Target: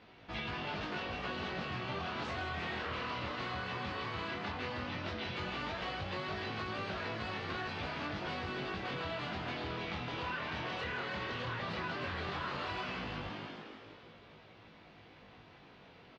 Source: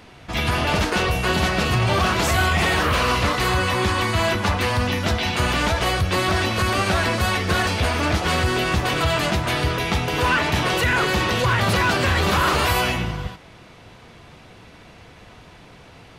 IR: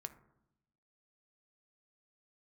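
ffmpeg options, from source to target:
-filter_complex "[0:a]lowpass=f=4.6k:w=0.5412,lowpass=f=4.6k:w=1.3066,asplit=9[a][b][c][d][e][f][g][h][i];[b]adelay=160,afreqshift=58,volume=-8dB[j];[c]adelay=320,afreqshift=116,volume=-12dB[k];[d]adelay=480,afreqshift=174,volume=-16dB[l];[e]adelay=640,afreqshift=232,volume=-20dB[m];[f]adelay=800,afreqshift=290,volume=-24.1dB[n];[g]adelay=960,afreqshift=348,volume=-28.1dB[o];[h]adelay=1120,afreqshift=406,volume=-32.1dB[p];[i]adelay=1280,afreqshift=464,volume=-36.1dB[q];[a][j][k][l][m][n][o][p][q]amix=inputs=9:normalize=0,flanger=delay=18.5:depth=7.1:speed=0.14,lowshelf=f=74:g=-11,acompressor=threshold=-28dB:ratio=4,volume=-9dB"

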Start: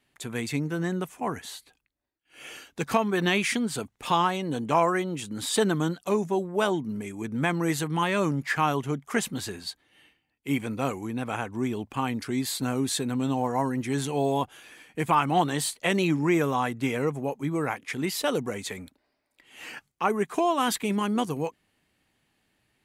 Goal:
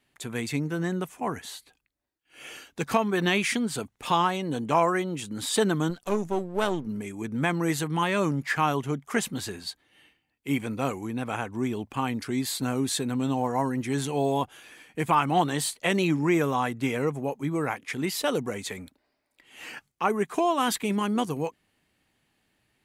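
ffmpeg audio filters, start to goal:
-filter_complex "[0:a]asettb=1/sr,asplit=3[a][b][c];[a]atrim=end=5.904[d];[b]atrim=start=5.9:end=6.87,asetpts=PTS-STARTPTS,afade=t=in:d=0.004:c=qsin,afade=t=out:st=0.966:d=0.004:c=qsin,aeval=exprs='if(lt(val(0),0),0.447*val(0),val(0))':c=same[e];[c]atrim=start=6.866[f];[d][e]acrossfade=d=0.004:c1=hsin:c2=qsin[g];[g][f]acrossfade=d=0.004:c1=qsin:c2=hsin"

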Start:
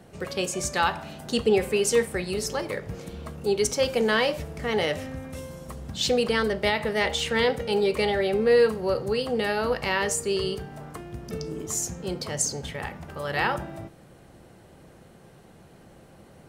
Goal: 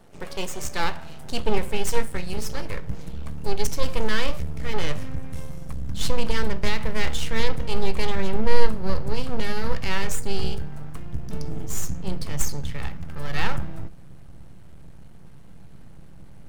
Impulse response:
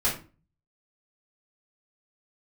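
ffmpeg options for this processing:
-filter_complex "[0:a]aeval=exprs='max(val(0),0)':c=same,asubboost=boost=4.5:cutoff=190,asplit=2[a][b];[1:a]atrim=start_sample=2205[c];[b][c]afir=irnorm=-1:irlink=0,volume=-25.5dB[d];[a][d]amix=inputs=2:normalize=0"

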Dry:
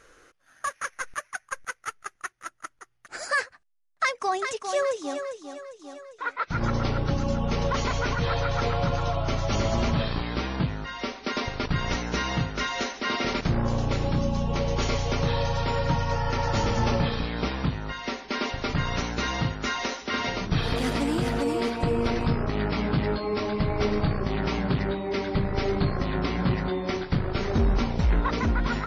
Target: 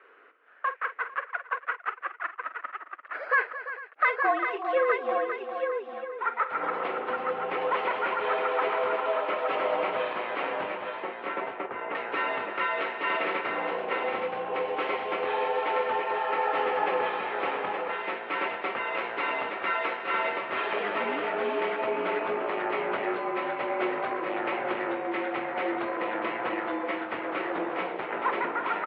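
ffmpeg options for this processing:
-filter_complex "[0:a]asettb=1/sr,asplit=3[a][b][c];[a]atrim=end=10.754[d];[b]atrim=start=10.75:end=11.95,asetpts=PTS-STARTPTS,afade=t=in:d=0.004:c=qsin,afade=t=out:st=1.196:d=0.004:c=qsin,adynamicsmooth=sensitivity=1:basefreq=1.1k[e];[c]atrim=start=11.946[f];[d][e]acrossfade=d=0.004:c1=hsin:c2=qsin[g];[g][f]acrossfade=d=0.004:c1=qsin:c2=hsin,aecho=1:1:46|220|344|450|869:0.251|0.178|0.224|0.112|0.531,highpass=f=460:t=q:w=0.5412,highpass=f=460:t=q:w=1.307,lowpass=f=2.8k:t=q:w=0.5176,lowpass=f=2.8k:t=q:w=0.7071,lowpass=f=2.8k:t=q:w=1.932,afreqshift=-51,volume=1.5dB"

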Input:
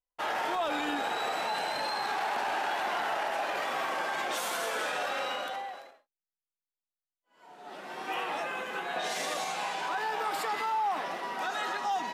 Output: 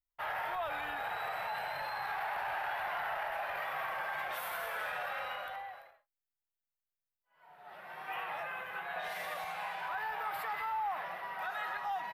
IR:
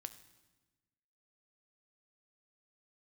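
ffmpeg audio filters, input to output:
-af "firequalizer=gain_entry='entry(110,0);entry(250,-27);entry(620,-11);entry(1900,-7);entry(3000,-14);entry(6800,-27);entry(13000,-4)':delay=0.05:min_phase=1,volume=4.5dB"

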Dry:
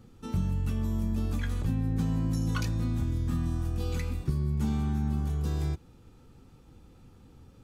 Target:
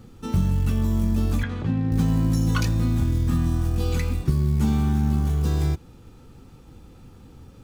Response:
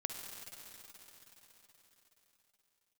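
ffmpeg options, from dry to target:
-filter_complex "[0:a]acrusher=bits=8:mode=log:mix=0:aa=0.000001,asettb=1/sr,asplit=3[a][b][c];[a]atrim=end=1.434[d];[b]atrim=start=1.43:end=1.92,asetpts=PTS-STARTPTS,afade=t=in:d=0.004:c=qsin,afade=t=out:st=0.486:d=0.004:c=qsin,highpass=110,lowpass=3.2k[e];[c]atrim=start=1.916[f];[d][e]acrossfade=d=0.004:c1=hsin:c2=qsin[g];[g][f]acrossfade=d=0.004:c1=qsin:c2=hsin,volume=7.5dB"

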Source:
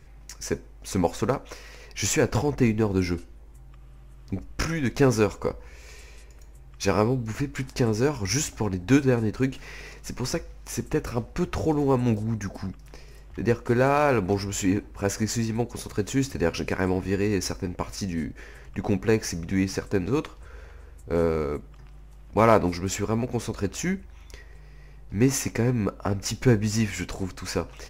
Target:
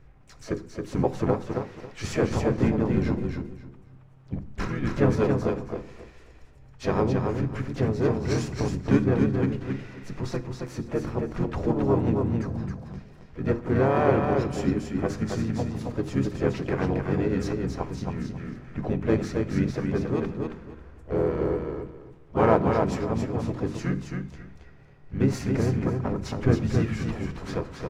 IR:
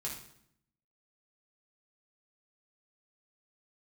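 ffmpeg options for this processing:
-filter_complex "[0:a]lowpass=f=1.5k:p=1,bandreject=f=50:t=h:w=6,bandreject=f=100:t=h:w=6,bandreject=f=150:t=h:w=6,bandreject=f=200:t=h:w=6,bandreject=f=250:t=h:w=6,bandreject=f=300:t=h:w=6,bandreject=f=350:t=h:w=6,bandreject=f=400:t=h:w=6,asplit=4[a][b][c][d];[b]asetrate=33038,aresample=44100,atempo=1.33484,volume=-2dB[e];[c]asetrate=55563,aresample=44100,atempo=0.793701,volume=-15dB[f];[d]asetrate=58866,aresample=44100,atempo=0.749154,volume=-12dB[g];[a][e][f][g]amix=inputs=4:normalize=0,aecho=1:1:272|544|816:0.596|0.125|0.0263,asplit=2[h][i];[1:a]atrim=start_sample=2205[j];[i][j]afir=irnorm=-1:irlink=0,volume=-11dB[k];[h][k]amix=inputs=2:normalize=0,volume=-4.5dB"

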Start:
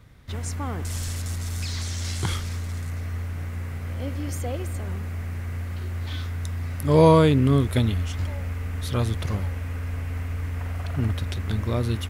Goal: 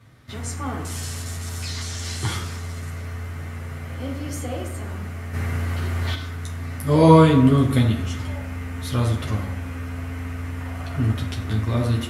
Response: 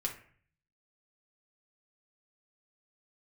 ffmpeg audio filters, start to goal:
-filter_complex "[0:a]highpass=100[a];[1:a]atrim=start_sample=2205,asetrate=26901,aresample=44100[b];[a][b]afir=irnorm=-1:irlink=0,asplit=3[c][d][e];[c]afade=t=out:st=5.33:d=0.02[f];[d]acontrast=78,afade=t=in:st=5.33:d=0.02,afade=t=out:st=6.14:d=0.02[g];[e]afade=t=in:st=6.14:d=0.02[h];[f][g][h]amix=inputs=3:normalize=0,volume=-2.5dB"

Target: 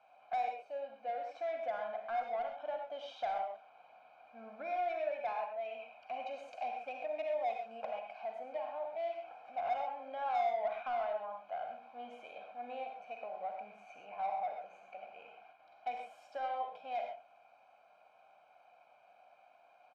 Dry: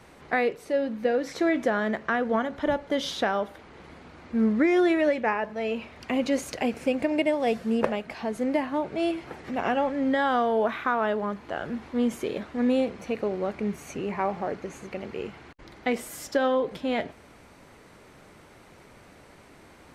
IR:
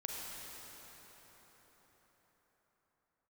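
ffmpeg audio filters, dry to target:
-filter_complex "[0:a]asplit=3[a][b][c];[a]bandpass=f=730:t=q:w=8,volume=0dB[d];[b]bandpass=f=1.09k:t=q:w=8,volume=-6dB[e];[c]bandpass=f=2.44k:t=q:w=8,volume=-9dB[f];[d][e][f]amix=inputs=3:normalize=0,aecho=1:1:1.3:0.77,asplit=2[g][h];[h]highpass=f=720:p=1,volume=12dB,asoftclip=type=tanh:threshold=-19dB[i];[g][i]amix=inputs=2:normalize=0,lowpass=f=5.1k:p=1,volume=-6dB[j];[1:a]atrim=start_sample=2205,afade=t=out:st=0.19:d=0.01,atrim=end_sample=8820[k];[j][k]afir=irnorm=-1:irlink=0,volume=-6.5dB"

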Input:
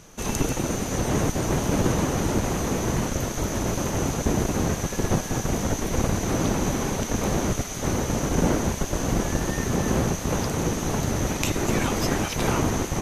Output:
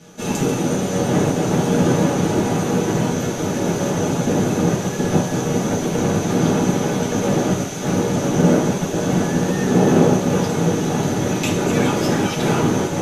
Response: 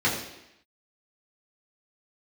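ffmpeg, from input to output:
-filter_complex "[0:a]asettb=1/sr,asplit=3[a][b][c];[a]atrim=end=9.634[d];[b]atrim=start=9.63:end=10.28,asetpts=PTS-STARTPTS,afade=t=in:d=0.004:c=qsin,afade=t=out:st=0.646:d=0.004:c=qsin,equalizer=f=480:w=0.5:g=5[e];[c]atrim=start=10.276[f];[d][e]acrossfade=d=0.004:c1=hsin:c2=qsin[g];[g][f]acrossfade=d=0.004:c1=qsin:c2=hsin[h];[1:a]atrim=start_sample=2205,asetrate=74970,aresample=44100[i];[h][i]afir=irnorm=-1:irlink=0,volume=-5.5dB"

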